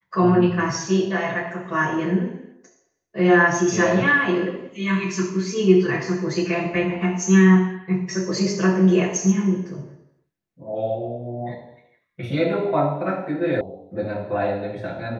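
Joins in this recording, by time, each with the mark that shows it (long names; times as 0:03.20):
0:13.61: cut off before it has died away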